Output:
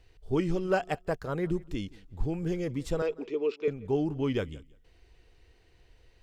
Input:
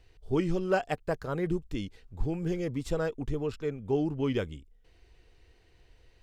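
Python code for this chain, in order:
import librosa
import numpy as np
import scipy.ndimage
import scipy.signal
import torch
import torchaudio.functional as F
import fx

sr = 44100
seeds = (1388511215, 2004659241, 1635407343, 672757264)

y = fx.cabinet(x, sr, low_hz=280.0, low_slope=24, high_hz=5500.0, hz=(410.0, 740.0, 1600.0, 2400.0), db=(9, -7, -8, 9), at=(3.02, 3.68))
y = fx.echo_feedback(y, sr, ms=173, feedback_pct=17, wet_db=-22.0)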